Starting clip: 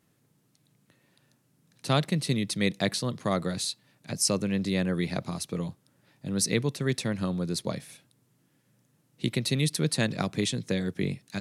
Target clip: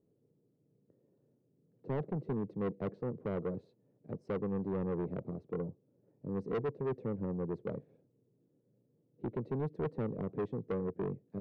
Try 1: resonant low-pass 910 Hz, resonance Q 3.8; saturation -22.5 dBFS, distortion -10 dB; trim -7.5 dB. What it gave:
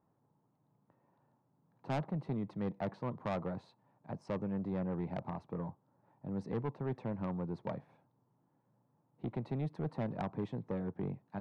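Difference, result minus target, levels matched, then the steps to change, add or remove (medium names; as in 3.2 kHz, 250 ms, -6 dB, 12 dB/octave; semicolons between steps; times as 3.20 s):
1 kHz band +4.5 dB
change: resonant low-pass 450 Hz, resonance Q 3.8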